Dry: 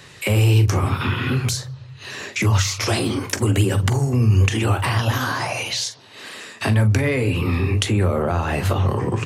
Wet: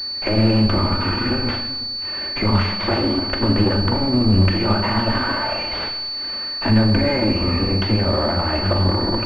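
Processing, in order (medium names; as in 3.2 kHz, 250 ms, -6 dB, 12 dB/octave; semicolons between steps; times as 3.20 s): comb filter that takes the minimum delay 3.3 ms; Schroeder reverb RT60 1.1 s, combs from 29 ms, DRR 6 dB; class-D stage that switches slowly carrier 4.5 kHz; trim +2.5 dB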